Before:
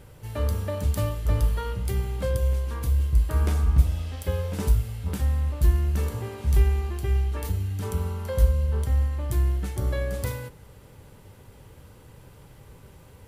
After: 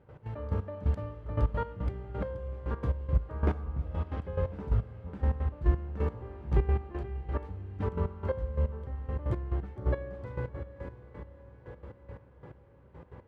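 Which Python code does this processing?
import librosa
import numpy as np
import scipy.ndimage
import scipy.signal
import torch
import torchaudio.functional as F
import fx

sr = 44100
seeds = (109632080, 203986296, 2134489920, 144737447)

y = scipy.signal.sosfilt(scipy.signal.butter(2, 1400.0, 'lowpass', fs=sr, output='sos'), x)
y = fx.echo_diffused(y, sr, ms=657, feedback_pct=62, wet_db=-11.5)
y = fx.step_gate(y, sr, bpm=175, pattern='.x.x..x...x....', floor_db=-12.0, edge_ms=4.5)
y = fx.highpass(y, sr, hz=130.0, slope=6)
y = F.gain(torch.from_numpy(y), 3.0).numpy()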